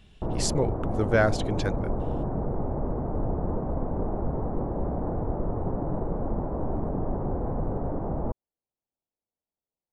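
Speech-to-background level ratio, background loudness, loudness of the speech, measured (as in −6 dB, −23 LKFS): 3.5 dB, −31.0 LKFS, −27.5 LKFS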